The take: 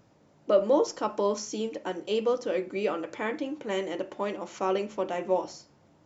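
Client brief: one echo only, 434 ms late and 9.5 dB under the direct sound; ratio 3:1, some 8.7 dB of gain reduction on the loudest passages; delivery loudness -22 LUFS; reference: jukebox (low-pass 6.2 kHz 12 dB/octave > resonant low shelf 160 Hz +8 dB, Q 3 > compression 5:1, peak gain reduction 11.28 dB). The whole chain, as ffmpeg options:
-af "acompressor=threshold=0.0355:ratio=3,lowpass=6200,lowshelf=f=160:t=q:w=3:g=8,aecho=1:1:434:0.335,acompressor=threshold=0.0126:ratio=5,volume=10"

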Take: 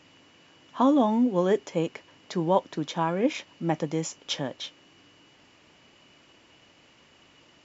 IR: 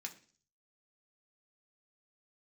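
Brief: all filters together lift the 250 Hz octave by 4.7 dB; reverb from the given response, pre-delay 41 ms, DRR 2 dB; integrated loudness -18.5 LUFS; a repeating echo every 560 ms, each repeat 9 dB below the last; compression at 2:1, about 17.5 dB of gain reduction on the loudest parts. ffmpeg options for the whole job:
-filter_complex "[0:a]equalizer=f=250:t=o:g=5.5,acompressor=threshold=0.00447:ratio=2,aecho=1:1:560|1120|1680|2240:0.355|0.124|0.0435|0.0152,asplit=2[s0][s1];[1:a]atrim=start_sample=2205,adelay=41[s2];[s1][s2]afir=irnorm=-1:irlink=0,volume=1.06[s3];[s0][s3]amix=inputs=2:normalize=0,volume=9.44"

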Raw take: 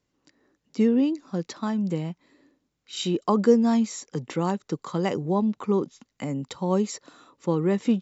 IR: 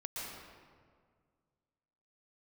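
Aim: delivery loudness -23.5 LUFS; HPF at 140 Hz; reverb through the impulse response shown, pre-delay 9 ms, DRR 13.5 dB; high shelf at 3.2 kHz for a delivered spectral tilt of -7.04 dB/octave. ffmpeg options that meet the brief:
-filter_complex "[0:a]highpass=140,highshelf=f=3200:g=-6.5,asplit=2[s0][s1];[1:a]atrim=start_sample=2205,adelay=9[s2];[s1][s2]afir=irnorm=-1:irlink=0,volume=0.188[s3];[s0][s3]amix=inputs=2:normalize=0,volume=1.33"

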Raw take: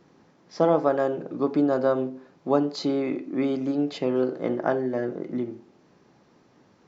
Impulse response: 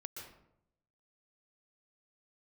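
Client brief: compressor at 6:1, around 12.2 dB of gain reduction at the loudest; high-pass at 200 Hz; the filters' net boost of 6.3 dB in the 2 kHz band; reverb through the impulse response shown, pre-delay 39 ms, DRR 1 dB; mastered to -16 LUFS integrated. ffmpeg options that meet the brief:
-filter_complex "[0:a]highpass=200,equalizer=f=2000:t=o:g=8.5,acompressor=threshold=0.0355:ratio=6,asplit=2[s0][s1];[1:a]atrim=start_sample=2205,adelay=39[s2];[s1][s2]afir=irnorm=-1:irlink=0,volume=1.26[s3];[s0][s3]amix=inputs=2:normalize=0,volume=5.62"

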